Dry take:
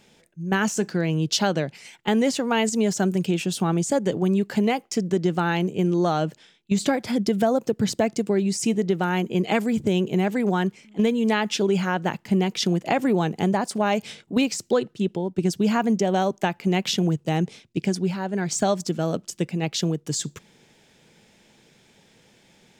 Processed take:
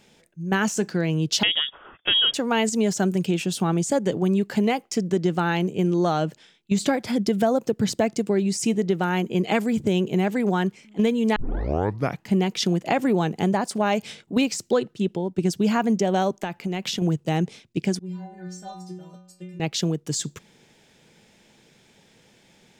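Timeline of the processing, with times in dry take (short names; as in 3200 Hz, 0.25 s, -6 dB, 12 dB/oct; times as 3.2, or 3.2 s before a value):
1.43–2.34 inverted band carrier 3500 Hz
11.36 tape start 0.90 s
16.33–17.02 compressor, threshold -23 dBFS
17.99–19.6 metallic resonator 180 Hz, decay 0.77 s, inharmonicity 0.008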